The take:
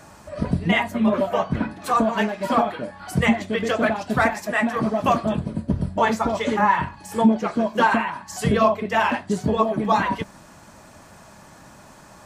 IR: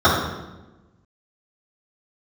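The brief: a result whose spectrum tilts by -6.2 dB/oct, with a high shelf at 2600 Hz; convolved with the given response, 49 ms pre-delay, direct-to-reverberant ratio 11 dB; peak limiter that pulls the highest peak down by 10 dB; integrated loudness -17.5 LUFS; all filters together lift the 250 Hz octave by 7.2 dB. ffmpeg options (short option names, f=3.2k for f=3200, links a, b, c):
-filter_complex "[0:a]equalizer=f=250:t=o:g=8.5,highshelf=f=2.6k:g=-3.5,alimiter=limit=-9dB:level=0:latency=1,asplit=2[a][b];[1:a]atrim=start_sample=2205,adelay=49[c];[b][c]afir=irnorm=-1:irlink=0,volume=-36.5dB[d];[a][d]amix=inputs=2:normalize=0,volume=2.5dB"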